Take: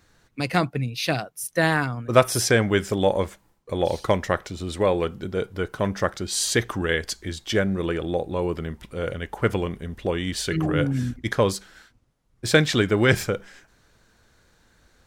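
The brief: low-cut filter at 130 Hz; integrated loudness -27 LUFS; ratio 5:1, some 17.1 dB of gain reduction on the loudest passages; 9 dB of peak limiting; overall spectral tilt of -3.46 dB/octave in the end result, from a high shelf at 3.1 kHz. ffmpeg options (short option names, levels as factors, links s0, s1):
-af "highpass=130,highshelf=f=3100:g=7.5,acompressor=threshold=0.0316:ratio=5,volume=2.51,alimiter=limit=0.211:level=0:latency=1"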